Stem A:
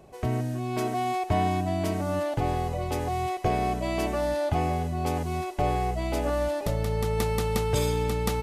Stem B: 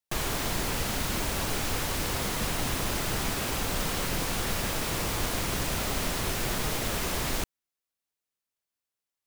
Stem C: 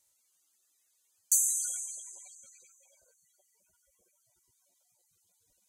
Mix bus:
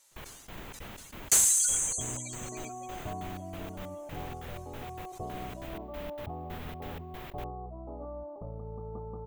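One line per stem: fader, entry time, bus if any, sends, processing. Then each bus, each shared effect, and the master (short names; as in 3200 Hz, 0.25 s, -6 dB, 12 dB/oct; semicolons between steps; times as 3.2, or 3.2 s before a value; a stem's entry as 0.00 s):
-14.5 dB, 1.75 s, no send, steep low-pass 1200 Hz 72 dB/oct
-13.5 dB, 0.00 s, no send, band shelf 7300 Hz -14.5 dB; step gate "x.x...xxx.xx..x" 187 bpm -24 dB
+2.5 dB, 0.00 s, no send, comb 7.3 ms, depth 48%; overdrive pedal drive 18 dB, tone 3300 Hz, clips at -9 dBFS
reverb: off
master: sustainer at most 44 dB/s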